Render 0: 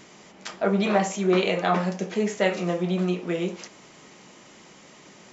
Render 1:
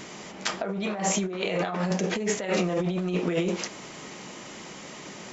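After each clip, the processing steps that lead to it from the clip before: negative-ratio compressor -30 dBFS, ratio -1; gain +2.5 dB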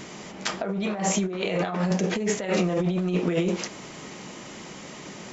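low shelf 280 Hz +4.5 dB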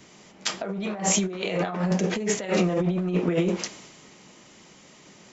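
three-band expander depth 70%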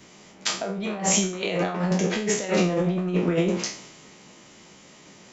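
spectral trails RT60 0.41 s

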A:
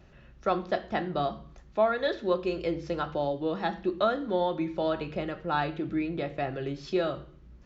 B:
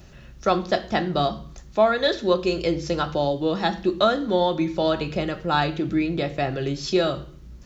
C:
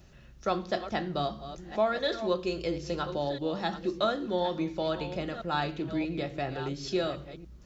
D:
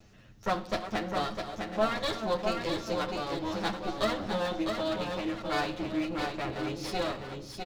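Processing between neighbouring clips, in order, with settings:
tone controls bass +3 dB, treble +14 dB; gain +6 dB
reverse delay 0.677 s, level -11.5 dB; gain -8.5 dB
minimum comb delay 9.5 ms; echo 0.655 s -5 dB; on a send at -19 dB: reverb RT60 2.1 s, pre-delay 8 ms

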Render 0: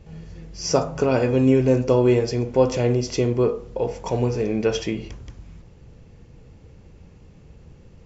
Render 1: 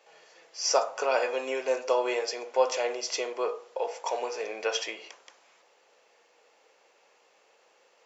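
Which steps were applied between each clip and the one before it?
HPF 590 Hz 24 dB/oct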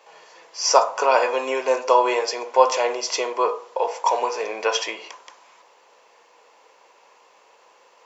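bell 1000 Hz +11.5 dB 0.29 oct; gain +6.5 dB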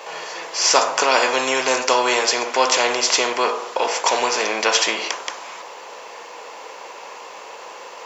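spectral compressor 2:1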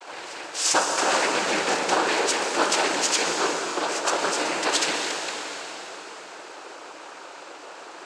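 noise vocoder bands 8; vibrato 0.51 Hz 27 cents; reverb RT60 3.8 s, pre-delay 0.114 s, DRR 3.5 dB; gain -5.5 dB

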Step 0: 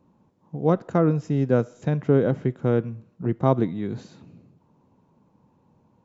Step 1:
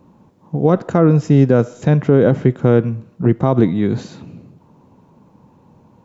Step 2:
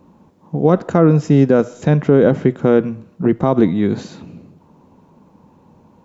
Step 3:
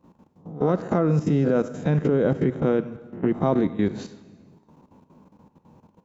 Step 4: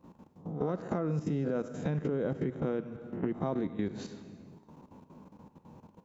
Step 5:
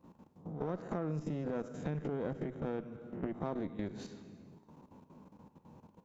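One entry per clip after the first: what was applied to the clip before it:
maximiser +13.5 dB; gain -1.5 dB
bell 120 Hz -14 dB 0.21 oct; gain +1 dB
spectral swells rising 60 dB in 0.36 s; level quantiser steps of 16 dB; plate-style reverb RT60 1.4 s, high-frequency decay 0.95×, DRR 13.5 dB; gain -4 dB
compressor 2.5:1, threshold -34 dBFS, peak gain reduction 12.5 dB
one diode to ground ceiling -31.5 dBFS; gain -3.5 dB

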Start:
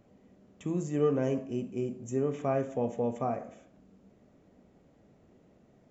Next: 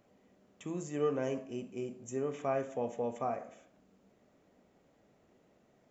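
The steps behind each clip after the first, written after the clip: low shelf 370 Hz -11 dB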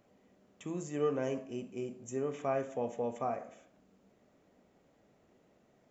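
nothing audible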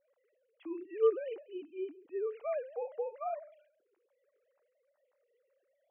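sine-wave speech

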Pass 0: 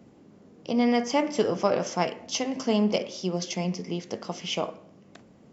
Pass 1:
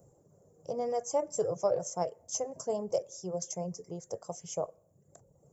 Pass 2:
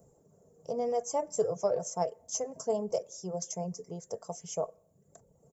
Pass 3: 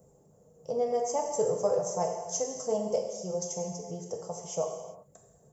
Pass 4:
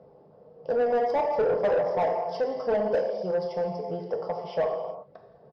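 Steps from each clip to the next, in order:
reverb removal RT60 0.76 s; EQ curve 150 Hz 0 dB, 230 Hz -20 dB, 530 Hz +1 dB, 1500 Hz -15 dB, 2700 Hz -27 dB, 4300 Hz -20 dB, 7300 Hz +9 dB; gain -1.5 dB
comb 4.5 ms, depth 38%
non-linear reverb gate 0.42 s falling, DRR 1 dB
downsampling 11025 Hz; overdrive pedal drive 20 dB, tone 1300 Hz, clips at -15.5 dBFS

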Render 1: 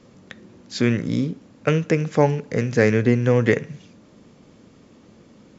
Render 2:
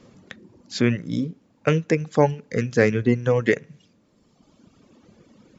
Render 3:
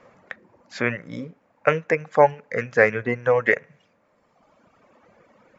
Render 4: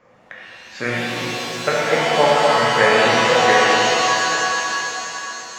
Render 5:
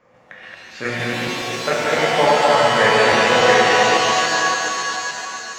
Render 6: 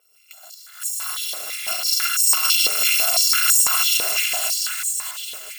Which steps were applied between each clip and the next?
reverb removal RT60 1.7 s
band shelf 1100 Hz +15 dB 2.6 oct; gain -9 dB
shimmer reverb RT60 3.3 s, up +7 st, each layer -2 dB, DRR -6.5 dB; gain -3.5 dB
reverse delay 0.142 s, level 0 dB; gain -2.5 dB
FFT order left unsorted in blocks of 256 samples; stepped high-pass 6 Hz 470–7300 Hz; gain -5.5 dB

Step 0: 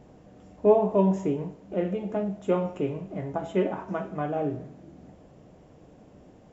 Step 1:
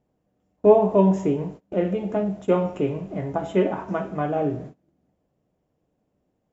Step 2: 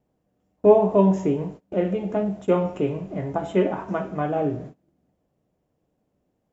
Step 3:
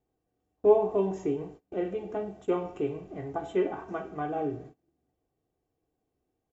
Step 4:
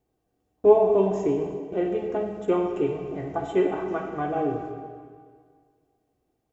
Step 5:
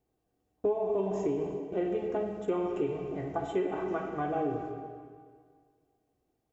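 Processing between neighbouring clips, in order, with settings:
gate -42 dBFS, range -25 dB; gain +4.5 dB
wow and flutter 21 cents
comb 2.6 ms, depth 57%; gain -8.5 dB
digital reverb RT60 1.9 s, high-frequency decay 0.85×, pre-delay 25 ms, DRR 5.5 dB; gain +4.5 dB
compressor 10:1, threshold -22 dBFS, peak gain reduction 12.5 dB; gain -3.5 dB

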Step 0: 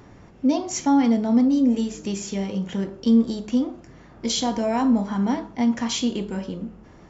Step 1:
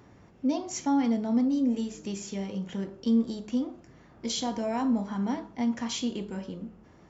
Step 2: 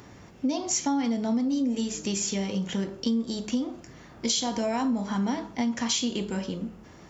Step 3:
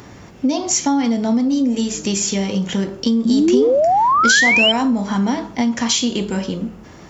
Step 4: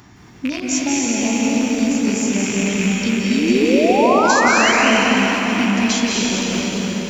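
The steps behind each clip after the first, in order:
HPF 52 Hz; gain -7 dB
high shelf 2500 Hz +9 dB; compressor 6:1, threshold -29 dBFS, peak gain reduction 9.5 dB; gain +5.5 dB
painted sound rise, 3.25–4.72, 220–3200 Hz -23 dBFS; gain +9 dB
rattling part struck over -29 dBFS, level -10 dBFS; LFO notch saw up 0.41 Hz 470–5100 Hz; reverb RT60 4.8 s, pre-delay 0.16 s, DRR -4.5 dB; gain -5 dB

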